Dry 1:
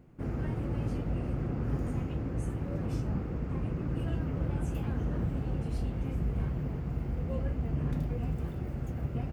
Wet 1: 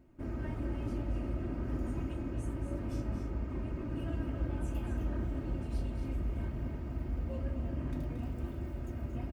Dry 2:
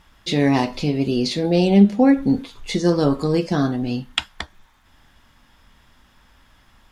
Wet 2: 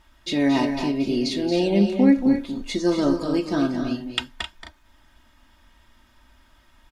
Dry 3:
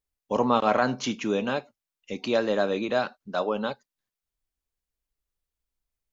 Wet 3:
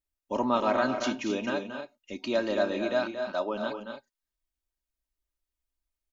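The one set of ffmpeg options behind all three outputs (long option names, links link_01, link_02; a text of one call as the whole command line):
ffmpeg -i in.wav -af "aecho=1:1:3.2:0.6,aecho=1:1:227.4|262.4:0.355|0.316,volume=-5dB" out.wav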